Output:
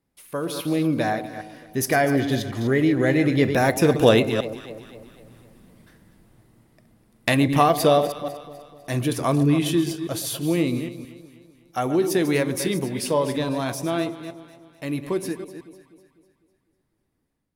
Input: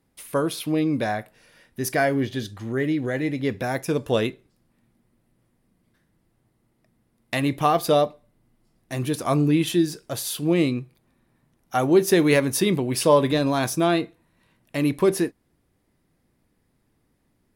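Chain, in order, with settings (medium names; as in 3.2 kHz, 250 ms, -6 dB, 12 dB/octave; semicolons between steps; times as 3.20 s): chunks repeated in reverse 160 ms, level -11 dB; Doppler pass-by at 5.13 s, 6 m/s, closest 4.7 m; in parallel at +1.5 dB: compression, threshold -35 dBFS, peak gain reduction 13.5 dB; on the sum: echo whose repeats swap between lows and highs 125 ms, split 890 Hz, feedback 68%, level -12 dB; level rider gain up to 7 dB; trim +2.5 dB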